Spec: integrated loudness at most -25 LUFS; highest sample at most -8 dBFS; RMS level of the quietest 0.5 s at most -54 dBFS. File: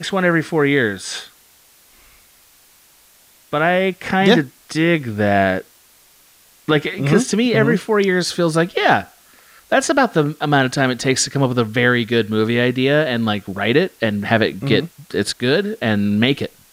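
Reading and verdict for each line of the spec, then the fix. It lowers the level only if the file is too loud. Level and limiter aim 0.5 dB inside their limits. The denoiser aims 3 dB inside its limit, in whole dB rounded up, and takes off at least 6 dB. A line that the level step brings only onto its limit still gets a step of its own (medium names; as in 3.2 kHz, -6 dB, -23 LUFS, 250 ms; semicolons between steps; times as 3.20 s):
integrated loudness -17.5 LUFS: fail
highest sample -1.5 dBFS: fail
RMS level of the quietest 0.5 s -51 dBFS: fail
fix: trim -8 dB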